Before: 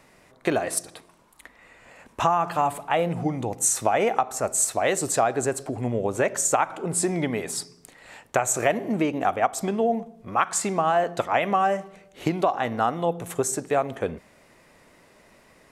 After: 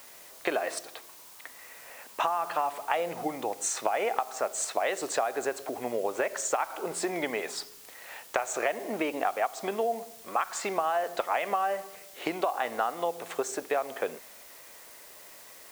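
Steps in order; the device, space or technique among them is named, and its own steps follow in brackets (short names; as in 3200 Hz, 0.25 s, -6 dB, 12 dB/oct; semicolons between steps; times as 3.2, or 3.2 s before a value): baby monitor (BPF 460–3600 Hz; compressor, threshold -26 dBFS, peak gain reduction 10 dB; white noise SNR 22 dB); tone controls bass -2 dB, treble +4 dB; gain +1.5 dB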